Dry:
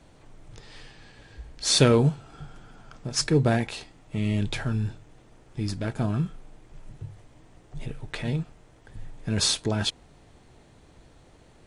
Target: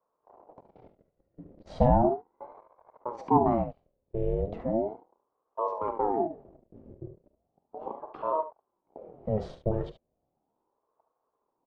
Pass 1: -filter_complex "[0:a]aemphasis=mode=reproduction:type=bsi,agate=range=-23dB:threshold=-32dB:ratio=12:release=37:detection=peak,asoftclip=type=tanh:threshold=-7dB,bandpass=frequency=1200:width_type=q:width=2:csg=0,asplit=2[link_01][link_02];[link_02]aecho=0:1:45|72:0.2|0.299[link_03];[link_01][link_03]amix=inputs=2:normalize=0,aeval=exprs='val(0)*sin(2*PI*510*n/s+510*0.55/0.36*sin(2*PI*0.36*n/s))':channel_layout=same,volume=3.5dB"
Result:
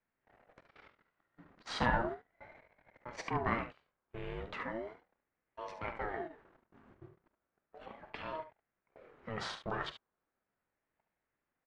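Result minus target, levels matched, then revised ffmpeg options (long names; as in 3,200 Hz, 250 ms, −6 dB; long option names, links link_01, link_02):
250 Hz band −3.0 dB
-filter_complex "[0:a]aemphasis=mode=reproduction:type=bsi,agate=range=-23dB:threshold=-32dB:ratio=12:release=37:detection=peak,asoftclip=type=tanh:threshold=-7dB,bandpass=frequency=310:width_type=q:width=2:csg=0,asplit=2[link_01][link_02];[link_02]aecho=0:1:45|72:0.2|0.299[link_03];[link_01][link_03]amix=inputs=2:normalize=0,aeval=exprs='val(0)*sin(2*PI*510*n/s+510*0.55/0.36*sin(2*PI*0.36*n/s))':channel_layout=same,volume=3.5dB"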